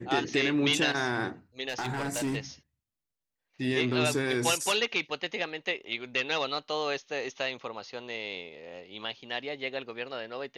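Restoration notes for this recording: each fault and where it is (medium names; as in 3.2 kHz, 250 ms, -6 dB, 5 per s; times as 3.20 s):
1.68–2.36 s: clipped -27 dBFS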